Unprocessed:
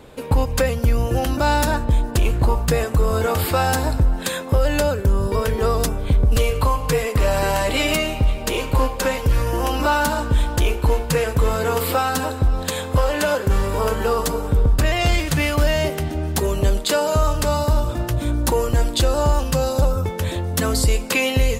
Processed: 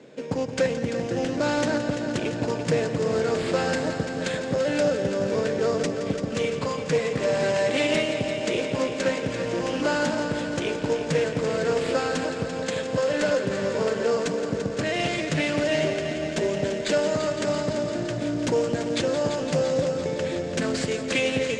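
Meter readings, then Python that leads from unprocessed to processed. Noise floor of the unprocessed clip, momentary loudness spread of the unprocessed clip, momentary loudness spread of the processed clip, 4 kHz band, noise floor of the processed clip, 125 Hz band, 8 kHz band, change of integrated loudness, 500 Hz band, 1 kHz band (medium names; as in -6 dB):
-29 dBFS, 3 LU, 5 LU, -5.0 dB, -31 dBFS, -11.5 dB, -8.0 dB, -5.0 dB, -1.5 dB, -9.0 dB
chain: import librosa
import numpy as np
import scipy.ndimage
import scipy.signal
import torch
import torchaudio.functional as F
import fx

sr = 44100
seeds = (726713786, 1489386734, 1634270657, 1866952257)

p1 = scipy.signal.sosfilt(scipy.signal.butter(4, 150.0, 'highpass', fs=sr, output='sos'), x)
p2 = fx.sample_hold(p1, sr, seeds[0], rate_hz=5900.0, jitter_pct=0)
p3 = p1 + F.gain(torch.from_numpy(p2), -3.0).numpy()
p4 = scipy.signal.sosfilt(scipy.signal.butter(6, 7600.0, 'lowpass', fs=sr, output='sos'), p3)
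p5 = fx.band_shelf(p4, sr, hz=1000.0, db=-8.5, octaves=1.0)
p6 = fx.echo_heads(p5, sr, ms=170, heads='first and second', feedback_pct=74, wet_db=-12.0)
p7 = fx.doppler_dist(p6, sr, depth_ms=0.26)
y = F.gain(torch.from_numpy(p7), -7.0).numpy()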